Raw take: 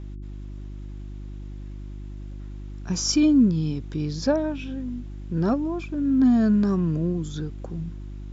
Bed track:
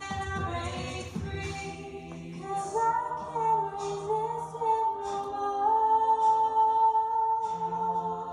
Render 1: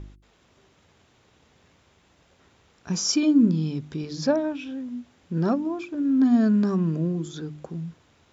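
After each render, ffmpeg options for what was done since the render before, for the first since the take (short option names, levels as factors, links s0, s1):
-af "bandreject=f=50:t=h:w=4,bandreject=f=100:t=h:w=4,bandreject=f=150:t=h:w=4,bandreject=f=200:t=h:w=4,bandreject=f=250:t=h:w=4,bandreject=f=300:t=h:w=4,bandreject=f=350:t=h:w=4"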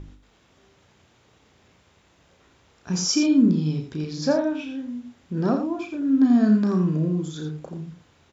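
-filter_complex "[0:a]asplit=2[s0][s1];[s1]adelay=33,volume=0.447[s2];[s0][s2]amix=inputs=2:normalize=0,asplit=2[s3][s4];[s4]aecho=0:1:84:0.422[s5];[s3][s5]amix=inputs=2:normalize=0"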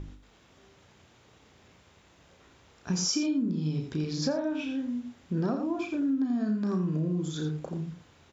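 -af "acompressor=threshold=0.0562:ratio=12"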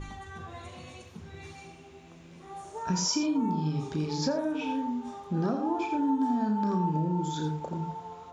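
-filter_complex "[1:a]volume=0.299[s0];[0:a][s0]amix=inputs=2:normalize=0"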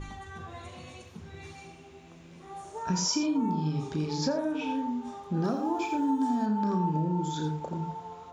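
-filter_complex "[0:a]asettb=1/sr,asplit=3[s0][s1][s2];[s0]atrim=end=5.444[s3];[s1]atrim=start=5.44:end=6.46,asetpts=PTS-STARTPTS,afade=t=in:d=0.004:c=qsin,afade=t=out:st=1.016:d=0.004:c=qsin,aemphasis=mode=production:type=50fm[s4];[s2]atrim=start=6.456[s5];[s3][s4]acrossfade=d=0.004:c1=hsin:c2=qsin[s6];[s6][s5]acrossfade=d=0.004:c1=qsin:c2=hsin"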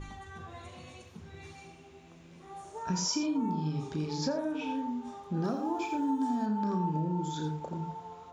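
-af "volume=0.708"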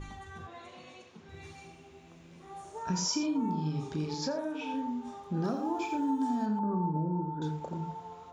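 -filter_complex "[0:a]asettb=1/sr,asplit=3[s0][s1][s2];[s0]atrim=end=0.474[s3];[s1]atrim=start=0.47:end=1.29,asetpts=PTS-STARTPTS,afade=t=in:d=0.004:c=qsin,afade=t=out:st=0.816:d=0.004:c=qsin,highpass=220,lowpass=5800[s4];[s2]atrim=start=1.286[s5];[s3][s4]acrossfade=d=0.004:c1=hsin:c2=qsin[s6];[s6][s5]acrossfade=d=0.004:c1=qsin:c2=hsin,asettb=1/sr,asplit=3[s7][s8][s9];[s7]atrim=end=4.144[s10];[s8]atrim=start=4.14:end=4.74,asetpts=PTS-STARTPTS,afade=t=in:d=0.004:c=qsin,afade=t=out:st=0.596:d=0.004:c=qsin,lowshelf=f=200:g=-9.5[s11];[s9]atrim=start=4.736[s12];[s10][s11]acrossfade=d=0.004:c1=hsin:c2=qsin[s13];[s13][s12]acrossfade=d=0.004:c1=qsin:c2=hsin,asettb=1/sr,asplit=3[s14][s15][s16];[s14]atrim=end=6.594[s17];[s15]atrim=start=6.59:end=7.42,asetpts=PTS-STARTPTS,afade=t=in:d=0.004:c=qsin,afade=t=out:st=0.826:d=0.004:c=qsin,lowpass=f=1200:w=0.5412,lowpass=f=1200:w=1.3066[s18];[s16]atrim=start=7.416[s19];[s17][s18]acrossfade=d=0.004:c1=hsin:c2=qsin[s20];[s20][s19]acrossfade=d=0.004:c1=qsin:c2=hsin"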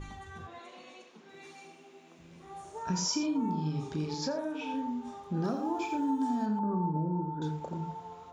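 -filter_complex "[0:a]asettb=1/sr,asplit=3[s0][s1][s2];[s0]atrim=end=0.594[s3];[s1]atrim=start=0.59:end=2.19,asetpts=PTS-STARTPTS,afade=t=in:d=0.004:c=qsin,afade=t=out:st=1.596:d=0.004:c=qsin,highpass=f=210:w=0.5412,highpass=f=210:w=1.3066[s4];[s2]atrim=start=2.186[s5];[s3][s4]acrossfade=d=0.004:c1=hsin:c2=qsin[s6];[s6][s5]acrossfade=d=0.004:c1=qsin:c2=hsin"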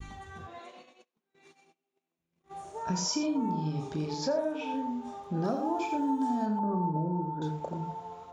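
-af "adynamicequalizer=threshold=0.00251:dfrequency=630:dqfactor=1.9:tfrequency=630:tqfactor=1.9:attack=5:release=100:ratio=0.375:range=3.5:mode=boostabove:tftype=bell,agate=range=0.0251:threshold=0.00398:ratio=16:detection=peak"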